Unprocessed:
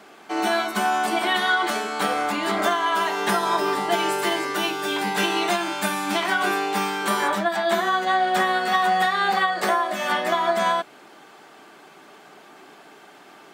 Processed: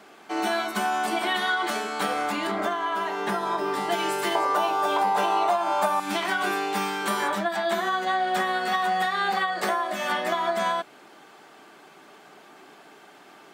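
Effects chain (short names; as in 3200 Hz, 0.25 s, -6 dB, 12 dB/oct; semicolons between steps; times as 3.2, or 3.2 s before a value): 4.35–6 band shelf 770 Hz +14.5 dB; compressor 5:1, threshold -18 dBFS, peak gain reduction 11 dB; 2.47–3.74 high shelf 2500 Hz -9 dB; gain -2.5 dB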